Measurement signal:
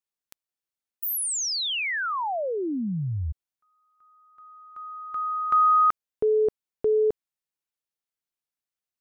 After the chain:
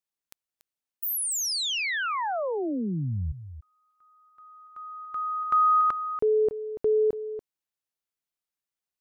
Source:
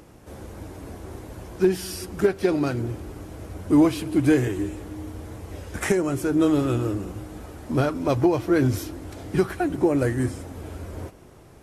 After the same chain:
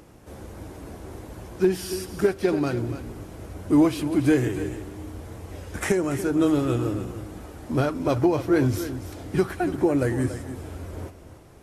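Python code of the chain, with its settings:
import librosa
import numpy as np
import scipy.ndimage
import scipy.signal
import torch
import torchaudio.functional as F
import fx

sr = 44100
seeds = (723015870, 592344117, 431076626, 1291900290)

y = x + 10.0 ** (-12.0 / 20.0) * np.pad(x, (int(286 * sr / 1000.0), 0))[:len(x)]
y = F.gain(torch.from_numpy(y), -1.0).numpy()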